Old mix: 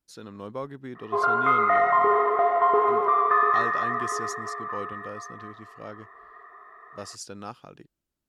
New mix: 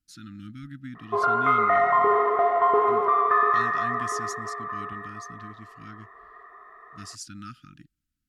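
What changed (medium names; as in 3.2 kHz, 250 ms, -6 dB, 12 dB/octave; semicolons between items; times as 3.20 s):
speech: add brick-wall FIR band-stop 330–1200 Hz; master: add bass shelf 120 Hz +6 dB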